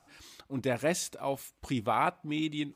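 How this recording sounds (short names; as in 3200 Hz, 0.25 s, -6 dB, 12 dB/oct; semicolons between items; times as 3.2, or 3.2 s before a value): noise floor -67 dBFS; spectral tilt -4.5 dB/oct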